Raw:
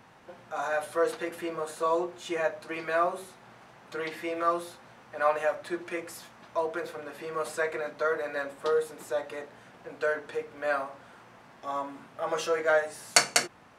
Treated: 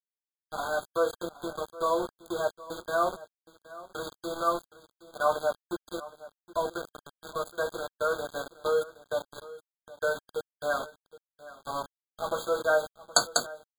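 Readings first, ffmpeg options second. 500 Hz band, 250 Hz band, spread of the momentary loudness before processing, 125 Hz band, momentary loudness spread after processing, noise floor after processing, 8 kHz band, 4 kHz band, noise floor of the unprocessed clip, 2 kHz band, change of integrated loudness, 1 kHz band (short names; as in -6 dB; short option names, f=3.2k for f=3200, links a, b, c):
-0.5 dB, -2.0 dB, 15 LU, +0.5 dB, 18 LU, under -85 dBFS, -2.0 dB, -1.0 dB, -55 dBFS, -3.0 dB, -1.0 dB, -0.5 dB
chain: -af "aeval=exprs='val(0)*gte(abs(val(0)),0.0266)':c=same,aecho=1:1:769:0.126,afftfilt=real='re*eq(mod(floor(b*sr/1024/1600),2),0)':imag='im*eq(mod(floor(b*sr/1024/1600),2),0)':win_size=1024:overlap=0.75"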